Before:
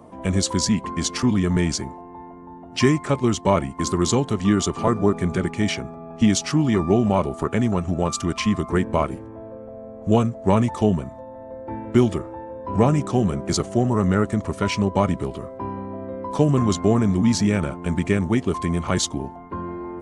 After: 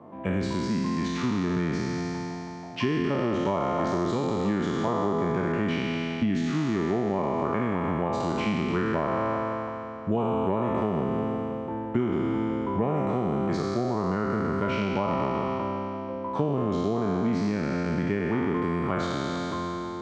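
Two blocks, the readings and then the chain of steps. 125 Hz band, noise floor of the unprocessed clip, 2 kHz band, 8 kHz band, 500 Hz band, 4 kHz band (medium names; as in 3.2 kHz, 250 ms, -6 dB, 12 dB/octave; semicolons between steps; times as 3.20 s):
-8.0 dB, -40 dBFS, -3.0 dB, under -15 dB, -4.0 dB, -9.5 dB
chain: spectral sustain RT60 2.94 s; compression, threshold -18 dBFS, peak gain reduction 9.5 dB; band-pass 110–2200 Hz; trim -3.5 dB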